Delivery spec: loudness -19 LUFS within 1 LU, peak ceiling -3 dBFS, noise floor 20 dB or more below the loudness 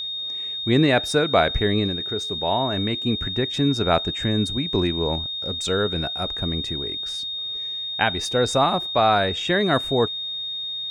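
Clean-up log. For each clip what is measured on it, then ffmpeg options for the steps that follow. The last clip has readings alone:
steady tone 3700 Hz; tone level -27 dBFS; loudness -22.5 LUFS; peak -4.5 dBFS; loudness target -19.0 LUFS
-> -af "bandreject=f=3.7k:w=30"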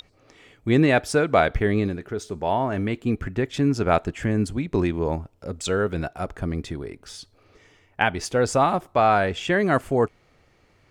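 steady tone none; loudness -23.5 LUFS; peak -5.0 dBFS; loudness target -19.0 LUFS
-> -af "volume=4.5dB,alimiter=limit=-3dB:level=0:latency=1"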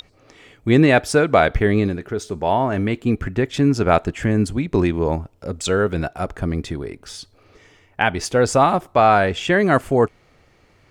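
loudness -19.0 LUFS; peak -3.0 dBFS; noise floor -56 dBFS

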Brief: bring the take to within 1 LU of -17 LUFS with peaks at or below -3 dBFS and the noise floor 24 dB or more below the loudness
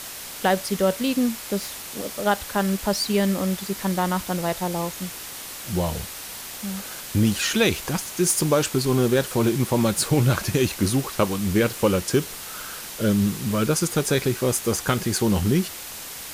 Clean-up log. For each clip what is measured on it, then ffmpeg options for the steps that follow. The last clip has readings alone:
noise floor -37 dBFS; noise floor target -48 dBFS; loudness -23.5 LUFS; peak -6.0 dBFS; loudness target -17.0 LUFS
-> -af "afftdn=nr=11:nf=-37"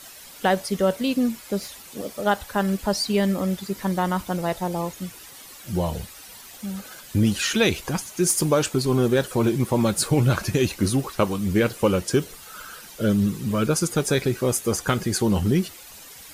noise floor -44 dBFS; noise floor target -48 dBFS
-> -af "afftdn=nr=6:nf=-44"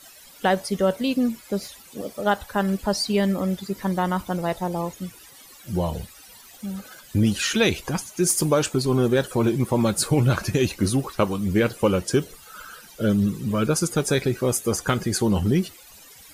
noise floor -48 dBFS; loudness -23.5 LUFS; peak -7.0 dBFS; loudness target -17.0 LUFS
-> -af "volume=6.5dB,alimiter=limit=-3dB:level=0:latency=1"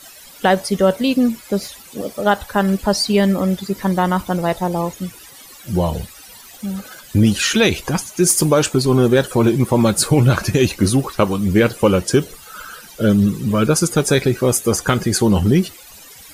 loudness -17.0 LUFS; peak -3.0 dBFS; noise floor -41 dBFS

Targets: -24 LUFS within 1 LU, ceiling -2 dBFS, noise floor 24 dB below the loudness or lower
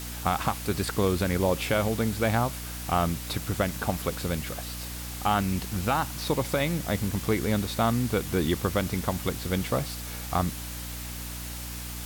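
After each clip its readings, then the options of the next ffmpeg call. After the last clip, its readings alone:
hum 60 Hz; harmonics up to 300 Hz; hum level -37 dBFS; noise floor -37 dBFS; noise floor target -53 dBFS; loudness -28.5 LUFS; peak -11.5 dBFS; loudness target -24.0 LUFS
-> -af "bandreject=f=60:t=h:w=6,bandreject=f=120:t=h:w=6,bandreject=f=180:t=h:w=6,bandreject=f=240:t=h:w=6,bandreject=f=300:t=h:w=6"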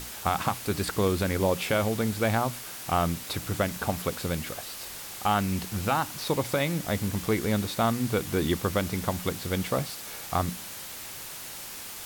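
hum none; noise floor -40 dBFS; noise floor target -53 dBFS
-> -af "afftdn=nr=13:nf=-40"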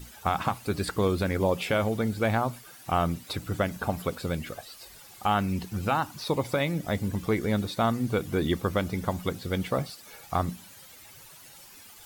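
noise floor -50 dBFS; noise floor target -53 dBFS
-> -af "afftdn=nr=6:nf=-50"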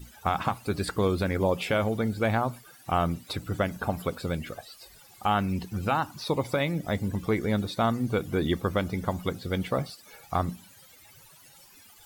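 noise floor -54 dBFS; loudness -29.0 LUFS; peak -12.5 dBFS; loudness target -24.0 LUFS
-> -af "volume=5dB"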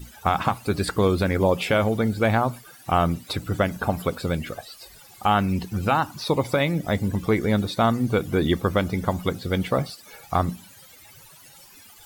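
loudness -24.0 LUFS; peak -7.5 dBFS; noise floor -49 dBFS

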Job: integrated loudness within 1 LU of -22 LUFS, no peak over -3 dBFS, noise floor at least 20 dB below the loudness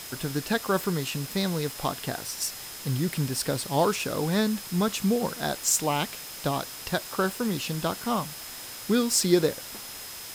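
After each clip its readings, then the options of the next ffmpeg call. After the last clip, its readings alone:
steady tone 5100 Hz; tone level -46 dBFS; noise floor -40 dBFS; noise floor target -48 dBFS; loudness -27.5 LUFS; peak -10.0 dBFS; loudness target -22.0 LUFS
-> -af "bandreject=f=5.1k:w=30"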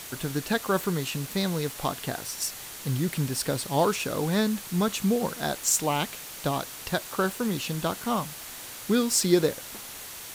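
steady tone none; noise floor -41 dBFS; noise floor target -48 dBFS
-> -af "afftdn=nr=7:nf=-41"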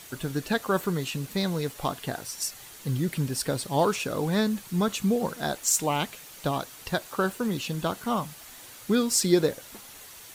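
noise floor -47 dBFS; noise floor target -48 dBFS
-> -af "afftdn=nr=6:nf=-47"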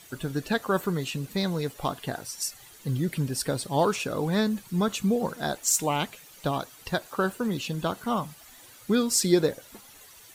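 noise floor -51 dBFS; loudness -28.0 LUFS; peak -10.0 dBFS; loudness target -22.0 LUFS
-> -af "volume=6dB"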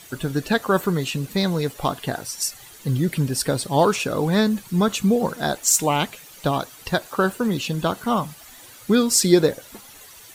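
loudness -22.0 LUFS; peak -4.0 dBFS; noise floor -45 dBFS

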